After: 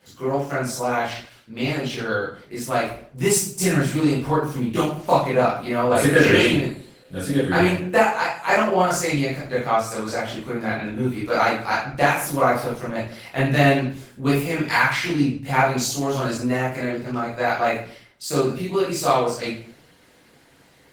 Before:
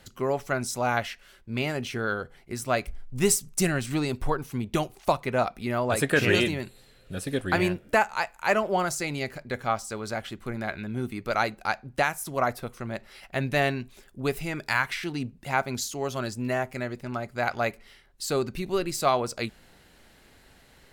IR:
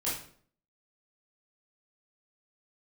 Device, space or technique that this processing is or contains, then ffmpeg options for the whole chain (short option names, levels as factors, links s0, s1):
far-field microphone of a smart speaker: -filter_complex "[0:a]asettb=1/sr,asplit=3[s0][s1][s2];[s0]atrim=end=1.034[s3];[s1]atrim=start=1.03:end=2.56,asetpts=PTS-STARTPTS,afade=t=in:d=0.004:c=qsin,afade=t=out:st=1.526:d=0.004:c=qsin,adynamicequalizer=threshold=0.00224:dfrequency=4000:dqfactor=2.7:tfrequency=4000:tqfactor=2.7:attack=5:release=100:ratio=0.375:range=3:mode=boostabove:tftype=bell[s4];[s2]atrim=start=2.556[s5];[s3][s4]acrossfade=d=0.004:c1=hsin:c2=qsin[s6];[s6][s5]acrossfade=d=0.004:c1=qsin:c2=hsin[s7];[1:a]atrim=start_sample=2205[s8];[s7][s8]afir=irnorm=-1:irlink=0,highpass=120,dynaudnorm=f=640:g=11:m=2.99,volume=0.891" -ar 48000 -c:a libopus -b:a 16k